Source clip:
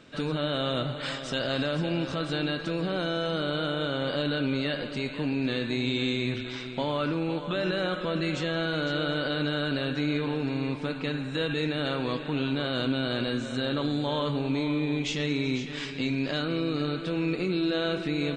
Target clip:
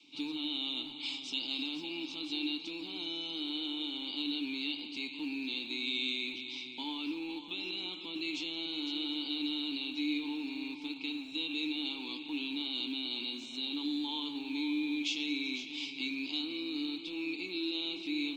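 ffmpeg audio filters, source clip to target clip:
-filter_complex "[0:a]lowpass=6800,adynamicequalizer=threshold=0.00708:dfrequency=140:dqfactor=1.2:tfrequency=140:tqfactor=1.2:attack=5:release=100:ratio=0.375:range=2.5:mode=cutabove:tftype=bell,asplit=3[s0][s1][s2];[s0]bandpass=f=300:t=q:w=8,volume=1[s3];[s1]bandpass=f=870:t=q:w=8,volume=0.501[s4];[s2]bandpass=f=2240:t=q:w=8,volume=0.355[s5];[s3][s4][s5]amix=inputs=3:normalize=0,acrossover=split=160|1200[s6][s7][s8];[s6]aeval=exprs='(mod(891*val(0)+1,2)-1)/891':c=same[s9];[s8]aexciter=amount=14.7:drive=8.6:freq=2900[s10];[s9][s7][s10]amix=inputs=3:normalize=0,volume=0.75"

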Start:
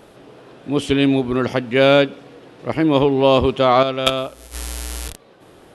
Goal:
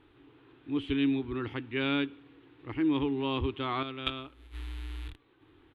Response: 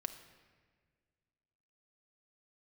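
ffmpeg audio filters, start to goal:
-af "firequalizer=gain_entry='entry(100,0);entry(200,-19);entry(290,1);entry(590,-23);entry(870,-8);entry(2200,-4);entry(3700,-6);entry(5300,-28);entry(9300,-26)':delay=0.05:min_phase=1,volume=0.376"

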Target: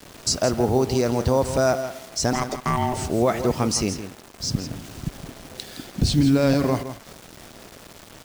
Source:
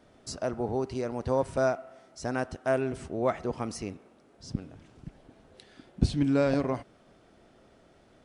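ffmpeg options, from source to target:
-filter_complex "[0:a]lowpass=6800,bass=f=250:g=3,treble=f=4000:g=13,asplit=2[s0][s1];[s1]acompressor=threshold=0.0158:ratio=6,volume=0.891[s2];[s0][s2]amix=inputs=2:normalize=0,alimiter=limit=0.133:level=0:latency=1:release=24,acrusher=bits=7:mix=0:aa=0.000001,asettb=1/sr,asplit=3[s3][s4][s5];[s3]atrim=end=2.334[s6];[s4]atrim=start=2.33:end=2.97,asetpts=PTS-STARTPTS,afade=t=in:d=0.004:c=qsin,afade=t=out:st=0.636:d=0.004:c=qsin,aeval=exprs='val(0)*sin(2*PI*500*n/s)':c=same[s7];[s5]atrim=start=2.966[s8];[s6][s7]acrossfade=d=0.004:c1=hsin:c2=qsin[s9];[s9][s8]acrossfade=d=0.004:c1=qsin:c2=hsin,asplit=2[s10][s11];[s11]aecho=0:1:165:0.282[s12];[s10][s12]amix=inputs=2:normalize=0,volume=2.24"

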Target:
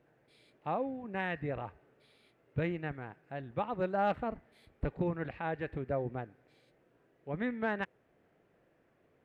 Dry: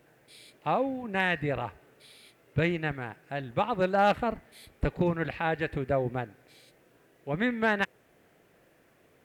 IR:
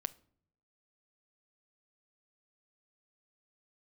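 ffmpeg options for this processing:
-af "lowpass=f=1500:p=1,volume=0.501"

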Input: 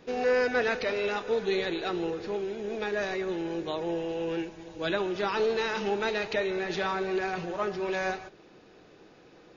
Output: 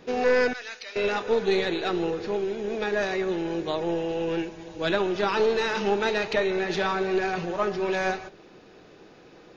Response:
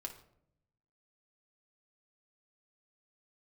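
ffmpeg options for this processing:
-filter_complex "[0:a]asettb=1/sr,asplit=3[s0][s1][s2];[s0]atrim=end=0.534[s3];[s1]atrim=start=0.53:end=0.96,asetpts=PTS-STARTPTS,afade=t=in:d=0.004:c=qsin,afade=t=out:st=0.426:d=0.004:c=qsin,aderivative[s4];[s2]atrim=start=0.956[s5];[s3][s4]acrossfade=d=0.004:c1=hsin:c2=qsin[s6];[s6][s5]acrossfade=d=0.004:c1=qsin:c2=hsin,aeval=exprs='0.178*(cos(1*acos(clip(val(0)/0.178,-1,1)))-cos(1*PI/2))+0.0355*(cos(2*acos(clip(val(0)/0.178,-1,1)))-cos(2*PI/2))+0.00126*(cos(4*acos(clip(val(0)/0.178,-1,1)))-cos(4*PI/2))':c=same,asplit=2[s7][s8];[1:a]atrim=start_sample=2205[s9];[s8][s9]afir=irnorm=-1:irlink=0,volume=0.211[s10];[s7][s10]amix=inputs=2:normalize=0,volume=1.41"

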